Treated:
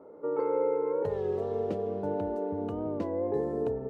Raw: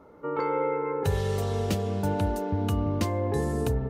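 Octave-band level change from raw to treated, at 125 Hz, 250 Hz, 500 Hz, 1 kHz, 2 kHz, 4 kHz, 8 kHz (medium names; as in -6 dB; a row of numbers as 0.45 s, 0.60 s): -14.5 dB, -4.5 dB, +0.5 dB, -6.0 dB, -13.5 dB, under -15 dB, under -25 dB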